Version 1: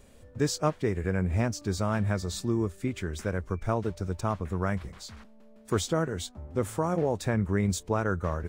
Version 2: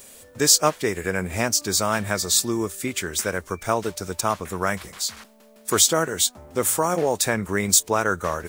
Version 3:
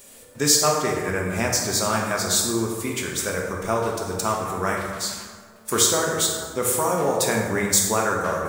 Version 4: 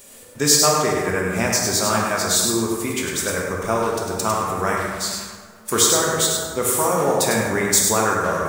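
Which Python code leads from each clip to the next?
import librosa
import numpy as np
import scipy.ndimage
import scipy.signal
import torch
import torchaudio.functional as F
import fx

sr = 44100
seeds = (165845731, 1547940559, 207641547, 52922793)

y1 = fx.riaa(x, sr, side='recording')
y1 = F.gain(torch.from_numpy(y1), 8.5).numpy()
y2 = fx.rev_plate(y1, sr, seeds[0], rt60_s=1.7, hf_ratio=0.5, predelay_ms=0, drr_db=-1.0)
y2 = F.gain(torch.from_numpy(y2), -3.0).numpy()
y3 = y2 + 10.0 ** (-5.5 / 20.0) * np.pad(y2, (int(101 * sr / 1000.0), 0))[:len(y2)]
y3 = F.gain(torch.from_numpy(y3), 2.0).numpy()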